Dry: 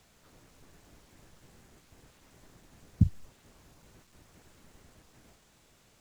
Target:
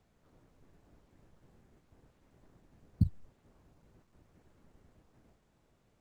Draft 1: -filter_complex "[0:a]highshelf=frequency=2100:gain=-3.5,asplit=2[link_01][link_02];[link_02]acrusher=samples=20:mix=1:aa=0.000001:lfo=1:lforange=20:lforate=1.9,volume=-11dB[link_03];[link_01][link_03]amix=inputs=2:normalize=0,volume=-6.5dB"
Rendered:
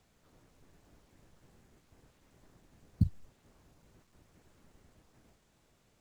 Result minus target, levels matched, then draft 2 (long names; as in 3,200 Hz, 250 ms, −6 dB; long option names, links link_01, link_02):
2,000 Hz band +4.0 dB
-filter_complex "[0:a]highshelf=frequency=2100:gain=-13,asplit=2[link_01][link_02];[link_02]acrusher=samples=20:mix=1:aa=0.000001:lfo=1:lforange=20:lforate=1.9,volume=-11dB[link_03];[link_01][link_03]amix=inputs=2:normalize=0,volume=-6.5dB"